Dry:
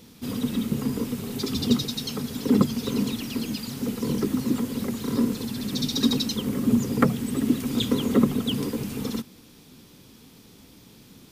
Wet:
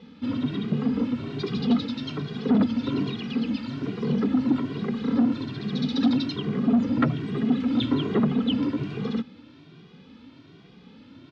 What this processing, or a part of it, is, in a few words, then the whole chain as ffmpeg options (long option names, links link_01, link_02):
barber-pole flanger into a guitar amplifier: -filter_complex "[0:a]asplit=2[link_01][link_02];[link_02]adelay=2,afreqshift=1.2[link_03];[link_01][link_03]amix=inputs=2:normalize=1,asoftclip=type=tanh:threshold=-20dB,highpass=85,equalizer=frequency=160:width_type=q:width=4:gain=4,equalizer=frequency=280:width_type=q:width=4:gain=4,equalizer=frequency=1400:width_type=q:width=4:gain=4,lowpass=frequency=3700:width=0.5412,lowpass=frequency=3700:width=1.3066,volume=3.5dB"